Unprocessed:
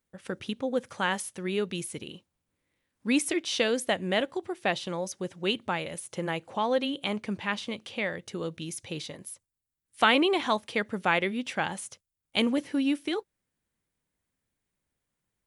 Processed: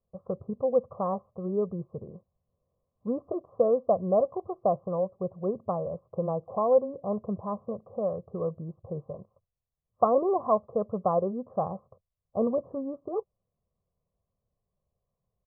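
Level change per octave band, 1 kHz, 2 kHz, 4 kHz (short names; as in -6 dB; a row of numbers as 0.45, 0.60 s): +0.5 dB, under -40 dB, under -40 dB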